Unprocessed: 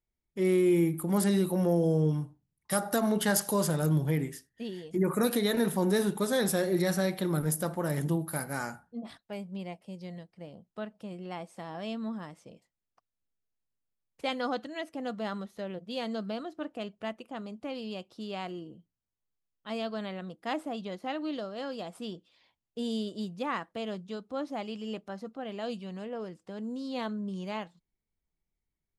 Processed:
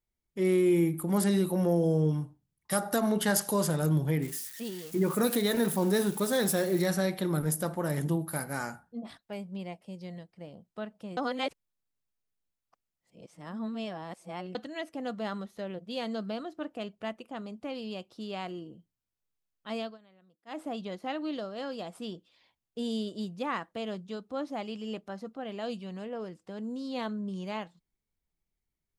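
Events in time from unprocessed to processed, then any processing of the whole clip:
4.22–6.86 switching spikes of -33.5 dBFS
11.17–14.55 reverse
19.79–20.65 dip -23.5 dB, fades 0.19 s

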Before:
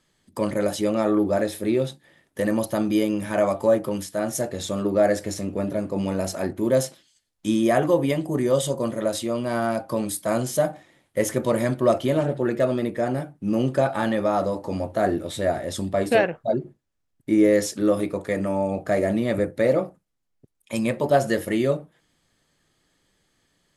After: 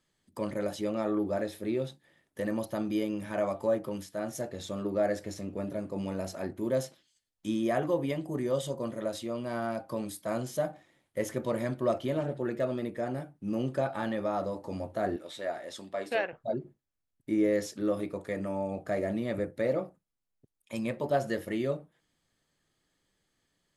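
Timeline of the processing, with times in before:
15.16–16.33 weighting filter A
whole clip: dynamic EQ 9200 Hz, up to -6 dB, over -50 dBFS, Q 1.1; gain -9 dB

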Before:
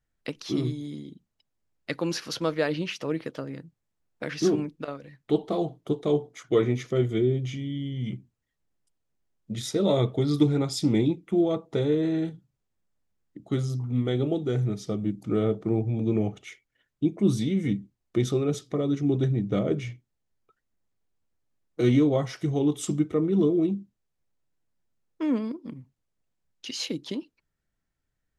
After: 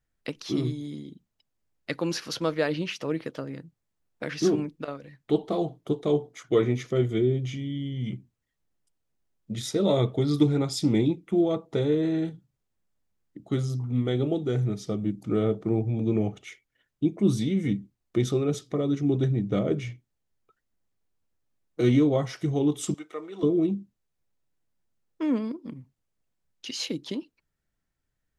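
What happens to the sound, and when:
22.94–23.43 HPF 800 Hz

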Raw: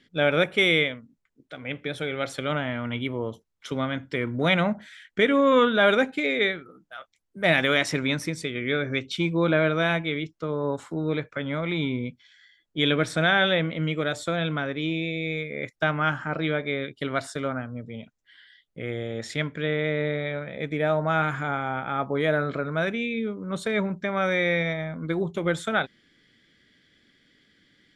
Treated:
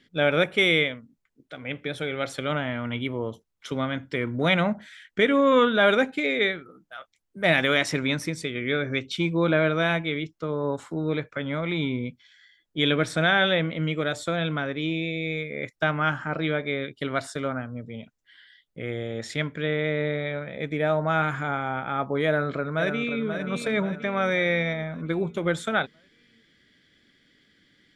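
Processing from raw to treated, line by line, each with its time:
22.26–23.24 echo throw 0.53 s, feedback 50%, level -7.5 dB

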